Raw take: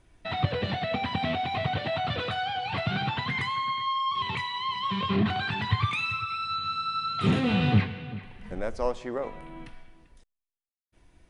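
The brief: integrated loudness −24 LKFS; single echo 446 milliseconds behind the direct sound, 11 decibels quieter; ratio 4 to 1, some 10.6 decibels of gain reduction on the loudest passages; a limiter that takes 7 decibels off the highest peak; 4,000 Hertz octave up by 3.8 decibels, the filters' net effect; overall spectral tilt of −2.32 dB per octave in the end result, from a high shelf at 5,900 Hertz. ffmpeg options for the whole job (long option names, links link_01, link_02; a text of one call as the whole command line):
ffmpeg -i in.wav -af "equalizer=frequency=4000:width_type=o:gain=7,highshelf=frequency=5900:gain=-7.5,acompressor=threshold=-30dB:ratio=4,alimiter=level_in=2.5dB:limit=-24dB:level=0:latency=1,volume=-2.5dB,aecho=1:1:446:0.282,volume=10dB" out.wav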